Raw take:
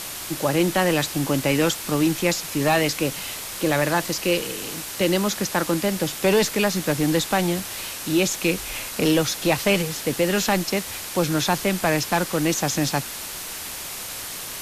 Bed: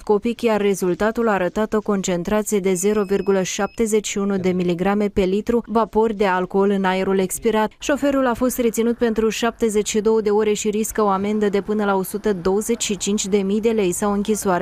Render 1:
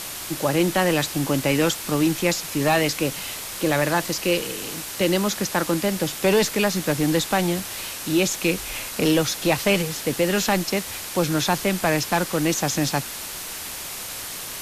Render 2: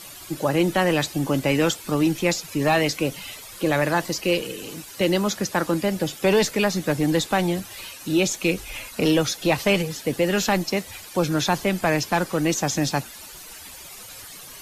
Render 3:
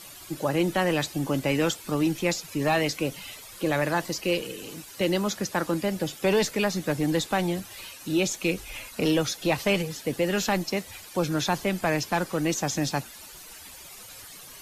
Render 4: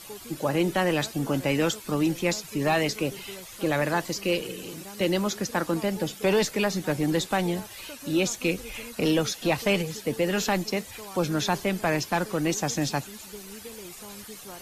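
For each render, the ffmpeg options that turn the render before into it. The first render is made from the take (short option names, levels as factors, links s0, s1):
-af anull
-af "afftdn=nr=13:nf=-34"
-af "volume=0.631"
-filter_complex "[1:a]volume=0.0531[s0];[0:a][s0]amix=inputs=2:normalize=0"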